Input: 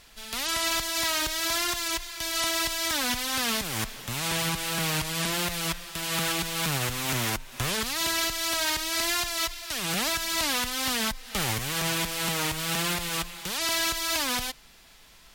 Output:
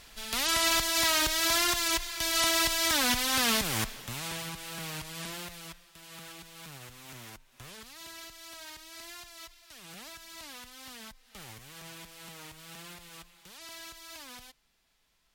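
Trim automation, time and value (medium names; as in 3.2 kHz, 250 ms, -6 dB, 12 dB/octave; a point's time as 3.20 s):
3.70 s +1 dB
4.46 s -11 dB
5.30 s -11 dB
5.92 s -19 dB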